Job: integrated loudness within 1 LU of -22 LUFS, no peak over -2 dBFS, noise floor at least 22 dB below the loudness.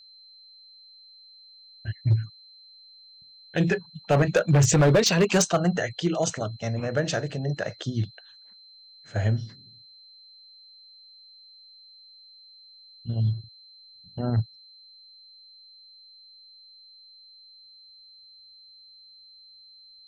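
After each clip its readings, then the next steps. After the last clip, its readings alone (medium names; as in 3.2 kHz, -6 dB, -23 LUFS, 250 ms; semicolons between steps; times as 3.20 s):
clipped samples 0.6%; clipping level -14.0 dBFS; steady tone 4.1 kHz; tone level -49 dBFS; loudness -25.0 LUFS; peak level -14.0 dBFS; loudness target -22.0 LUFS
-> clip repair -14 dBFS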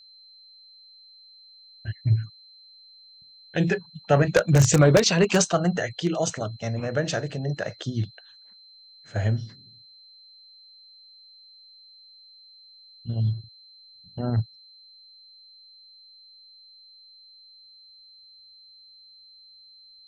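clipped samples 0.0%; steady tone 4.1 kHz; tone level -49 dBFS
-> band-stop 4.1 kHz, Q 30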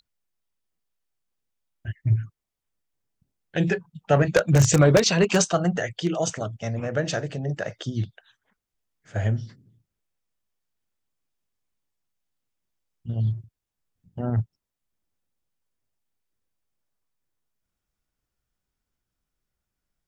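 steady tone not found; loudness -24.0 LUFS; peak level -5.0 dBFS; loudness target -22.0 LUFS
-> trim +2 dB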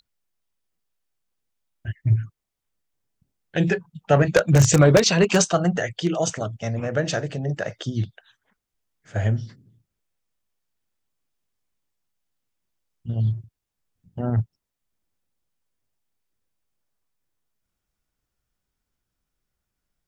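loudness -22.0 LUFS; peak level -3.0 dBFS; noise floor -83 dBFS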